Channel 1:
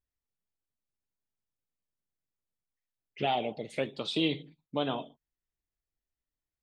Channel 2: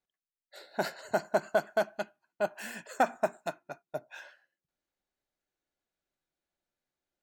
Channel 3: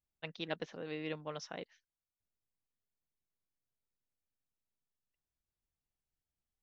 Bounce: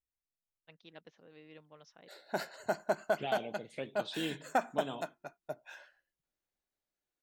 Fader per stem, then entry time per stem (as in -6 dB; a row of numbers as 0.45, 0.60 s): -8.5, -4.0, -14.5 dB; 0.00, 1.55, 0.45 s